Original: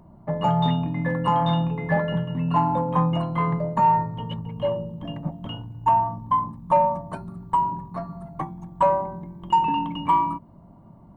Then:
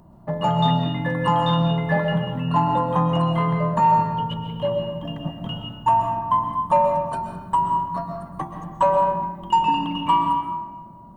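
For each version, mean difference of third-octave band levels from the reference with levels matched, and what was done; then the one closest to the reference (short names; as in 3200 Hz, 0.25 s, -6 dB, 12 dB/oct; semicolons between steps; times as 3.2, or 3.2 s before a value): 3.5 dB: high shelf 2500 Hz +7.5 dB; notch 2200 Hz, Q 9.6; digital reverb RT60 1.3 s, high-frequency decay 0.6×, pre-delay 90 ms, DRR 3.5 dB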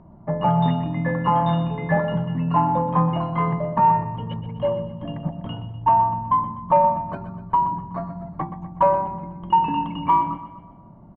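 2.0 dB: LPF 2400 Hz 12 dB/oct; on a send: feedback echo 0.124 s, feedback 50%, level -11.5 dB; on the sum: gain +2 dB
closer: second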